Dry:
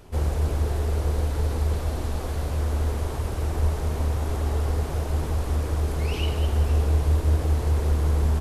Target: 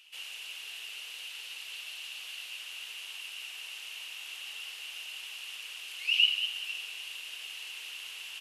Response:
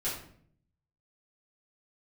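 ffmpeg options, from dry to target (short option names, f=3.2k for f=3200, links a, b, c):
-af "highpass=f=2.8k:t=q:w=11,volume=-5.5dB"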